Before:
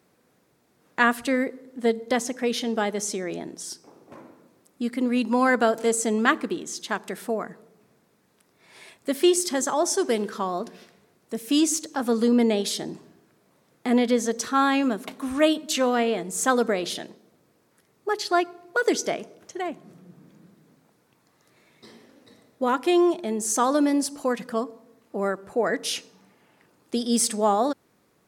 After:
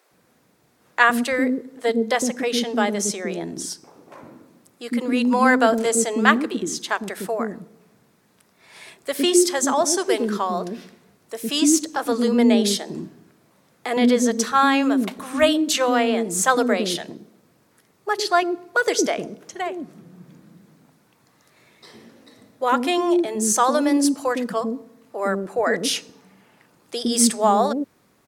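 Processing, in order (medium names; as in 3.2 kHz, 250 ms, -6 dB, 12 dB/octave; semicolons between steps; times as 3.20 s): bands offset in time highs, lows 110 ms, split 410 Hz; trim +5 dB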